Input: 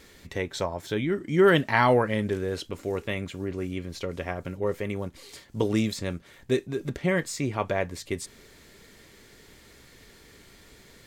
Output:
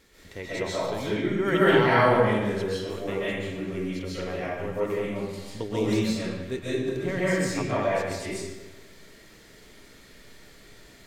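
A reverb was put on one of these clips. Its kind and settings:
comb and all-pass reverb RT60 1.2 s, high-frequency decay 0.8×, pre-delay 100 ms, DRR −9.5 dB
level −8 dB

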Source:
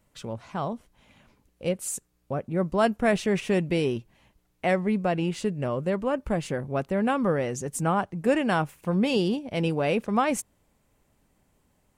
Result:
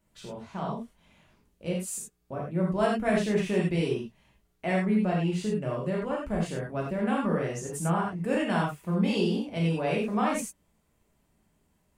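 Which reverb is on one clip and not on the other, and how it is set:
reverb whose tail is shaped and stops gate 120 ms flat, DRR −3.5 dB
level −8 dB

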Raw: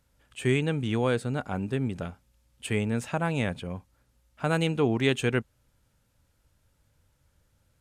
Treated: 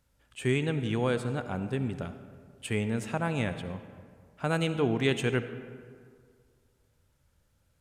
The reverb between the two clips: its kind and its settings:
comb and all-pass reverb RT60 2 s, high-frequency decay 0.5×, pre-delay 30 ms, DRR 10.5 dB
level −2.5 dB

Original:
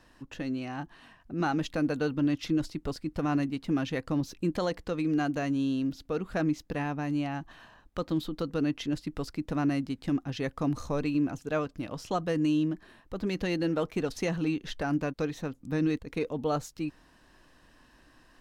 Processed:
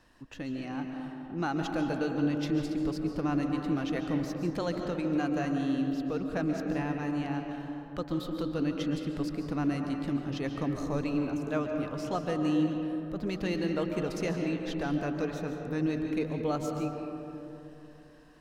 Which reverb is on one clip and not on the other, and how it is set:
comb and all-pass reverb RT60 3.2 s, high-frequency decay 0.3×, pre-delay 100 ms, DRR 3 dB
level −3 dB

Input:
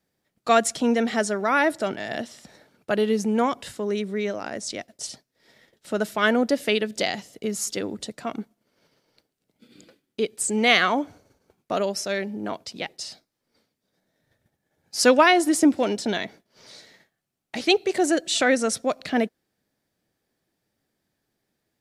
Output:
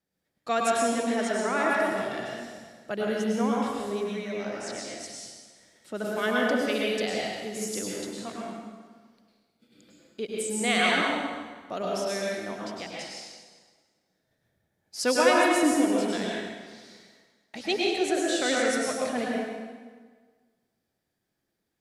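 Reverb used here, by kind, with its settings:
dense smooth reverb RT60 1.5 s, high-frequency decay 0.85×, pre-delay 90 ms, DRR −4 dB
level −9 dB

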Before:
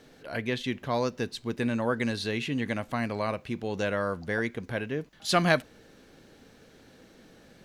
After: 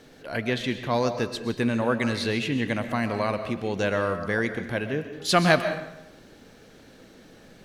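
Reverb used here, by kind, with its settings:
comb and all-pass reverb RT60 0.87 s, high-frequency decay 0.75×, pre-delay 85 ms, DRR 8.5 dB
level +3.5 dB

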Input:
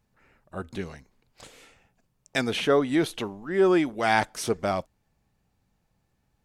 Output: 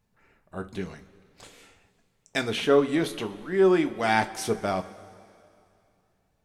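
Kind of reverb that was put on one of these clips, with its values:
coupled-rooms reverb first 0.25 s, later 2.6 s, from −18 dB, DRR 6.5 dB
level −1.5 dB

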